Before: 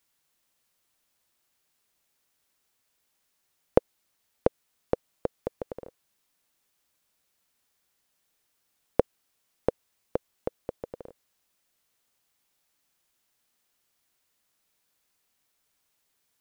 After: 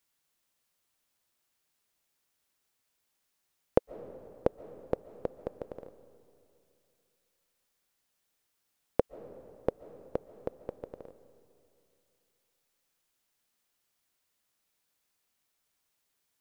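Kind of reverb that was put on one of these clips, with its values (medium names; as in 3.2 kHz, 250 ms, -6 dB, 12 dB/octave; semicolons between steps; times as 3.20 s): algorithmic reverb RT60 2.7 s, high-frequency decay 0.6×, pre-delay 100 ms, DRR 15 dB; trim -4 dB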